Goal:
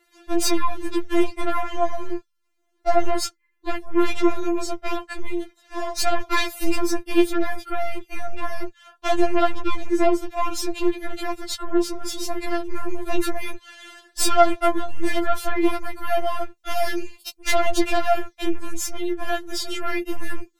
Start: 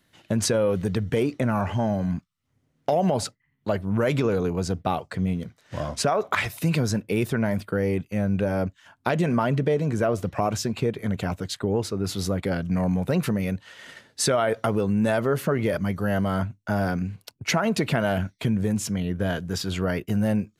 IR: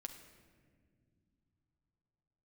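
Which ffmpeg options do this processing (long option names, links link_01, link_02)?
-filter_complex "[0:a]aeval=exprs='0.422*(cos(1*acos(clip(val(0)/0.422,-1,1)))-cos(1*PI/2))+0.168*(cos(5*acos(clip(val(0)/0.422,-1,1)))-cos(5*PI/2))+0.168*(cos(6*acos(clip(val(0)/0.422,-1,1)))-cos(6*PI/2))':channel_layout=same,asettb=1/sr,asplit=3[link_01][link_02][link_03];[link_01]atrim=end=16.574[link_04];[link_02]atrim=start=16.57:end=17.47,asetpts=PTS-STARTPTS,afade=type=in:duration=0.004:curve=qsin,afade=type=out:start_time=0.896:duration=0.004:curve=qsin,highshelf=frequency=2300:width_type=q:width=1.5:gain=7[link_05];[link_03]atrim=start=17.466[link_06];[link_04][link_05]acrossfade=duration=0.004:curve1=hsin:curve2=qsin[link_07];[link_07][link_06]acrossfade=duration=0.004:curve1=qsin:curve2=hsin,afftfilt=real='re*4*eq(mod(b,16),0)':imag='im*4*eq(mod(b,16),0)':win_size=2048:overlap=0.75,volume=-4dB"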